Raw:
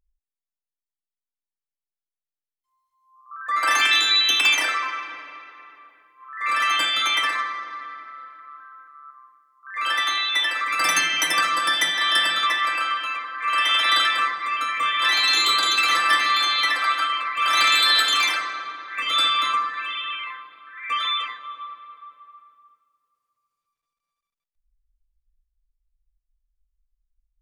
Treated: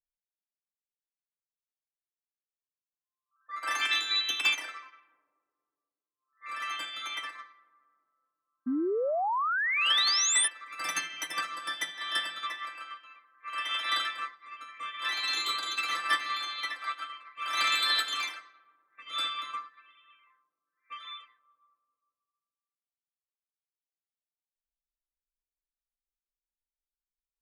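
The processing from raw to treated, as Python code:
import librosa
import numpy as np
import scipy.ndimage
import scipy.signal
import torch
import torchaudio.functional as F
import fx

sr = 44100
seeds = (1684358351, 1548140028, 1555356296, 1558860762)

y = fx.spec_paint(x, sr, seeds[0], shape='rise', start_s=8.66, length_s=1.82, low_hz=240.0, high_hz=10000.0, level_db=-18.0)
y = fx.env_lowpass(y, sr, base_hz=410.0, full_db=-20.5)
y = fx.upward_expand(y, sr, threshold_db=-31.0, expansion=2.5)
y = y * librosa.db_to_amplitude(-6.5)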